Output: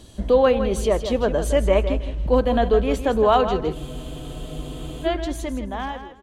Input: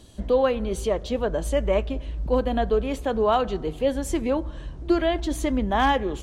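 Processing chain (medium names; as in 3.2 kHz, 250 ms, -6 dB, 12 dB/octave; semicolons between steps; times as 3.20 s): fade out at the end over 1.75 s; feedback delay 161 ms, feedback 21%, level -10 dB; spectral freeze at 3.77 s, 1.28 s; trim +4 dB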